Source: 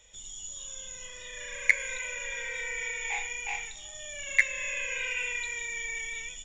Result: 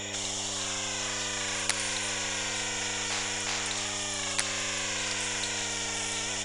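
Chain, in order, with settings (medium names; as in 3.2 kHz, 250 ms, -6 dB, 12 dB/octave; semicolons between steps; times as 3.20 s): resonant low shelf 410 Hz -11 dB, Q 3; mains buzz 100 Hz, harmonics 4, -53 dBFS -5 dB/octave; spectrum-flattening compressor 10:1; trim -1 dB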